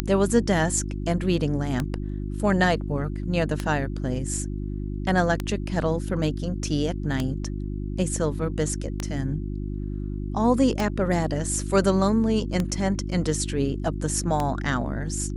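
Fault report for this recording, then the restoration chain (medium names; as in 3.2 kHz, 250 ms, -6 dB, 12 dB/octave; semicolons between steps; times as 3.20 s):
hum 50 Hz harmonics 7 -30 dBFS
tick 33 1/3 rpm -11 dBFS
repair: de-click; de-hum 50 Hz, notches 7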